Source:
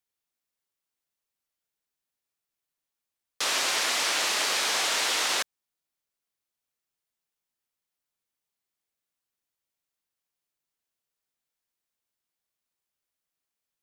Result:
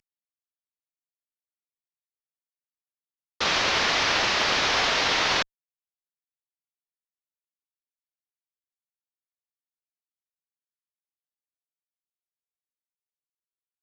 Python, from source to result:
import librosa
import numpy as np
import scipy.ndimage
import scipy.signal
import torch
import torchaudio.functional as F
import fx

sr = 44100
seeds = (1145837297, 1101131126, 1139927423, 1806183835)

y = fx.cvsd(x, sr, bps=32000)
y = fx.cheby_harmonics(y, sr, harmonics=(5, 7), levels_db=(-32, -33), full_scale_db=-16.5)
y = y * 10.0 ** (5.5 / 20.0)